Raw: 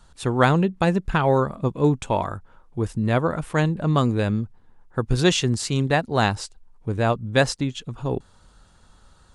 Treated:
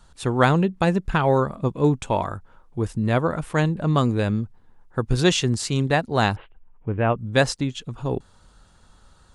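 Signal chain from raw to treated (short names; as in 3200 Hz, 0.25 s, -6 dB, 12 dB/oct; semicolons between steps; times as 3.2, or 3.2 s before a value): 6.36–7.18 steep low-pass 3100 Hz 72 dB/oct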